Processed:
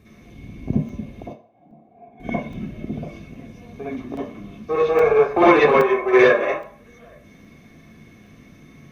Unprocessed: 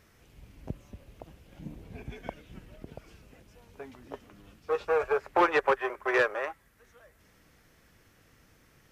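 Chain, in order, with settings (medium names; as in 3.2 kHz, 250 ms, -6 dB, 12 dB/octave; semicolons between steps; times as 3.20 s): 1.27–2.20 s: band-pass filter 750 Hz, Q 7.3; reverberation RT60 0.50 s, pre-delay 51 ms, DRR -9 dB; crackling interface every 0.82 s, samples 128, zero, from 0.89 s; trim -2 dB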